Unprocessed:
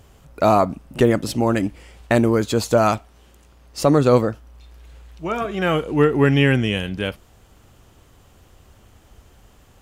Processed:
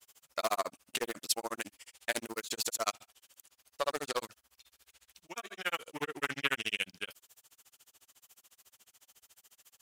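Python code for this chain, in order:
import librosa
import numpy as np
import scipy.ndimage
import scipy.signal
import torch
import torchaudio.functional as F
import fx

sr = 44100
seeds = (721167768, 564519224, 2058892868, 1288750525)

y = fx.granulator(x, sr, seeds[0], grain_ms=61.0, per_s=14.0, spray_ms=54.0, spread_st=0)
y = np.diff(y, prepend=0.0)
y = fx.doppler_dist(y, sr, depth_ms=0.33)
y = F.gain(torch.from_numpy(y), 6.0).numpy()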